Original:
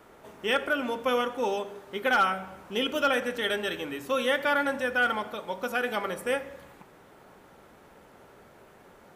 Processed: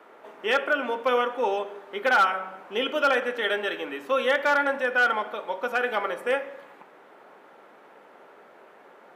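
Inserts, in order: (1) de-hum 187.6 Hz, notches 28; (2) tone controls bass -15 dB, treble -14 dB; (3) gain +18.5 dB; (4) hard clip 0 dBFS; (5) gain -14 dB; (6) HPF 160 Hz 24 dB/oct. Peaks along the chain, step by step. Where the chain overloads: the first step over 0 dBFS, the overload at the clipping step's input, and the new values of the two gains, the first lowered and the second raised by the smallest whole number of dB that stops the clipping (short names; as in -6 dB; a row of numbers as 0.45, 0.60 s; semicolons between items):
-15.0, -14.0, +4.5, 0.0, -14.0, -10.5 dBFS; step 3, 4.5 dB; step 3 +13.5 dB, step 5 -9 dB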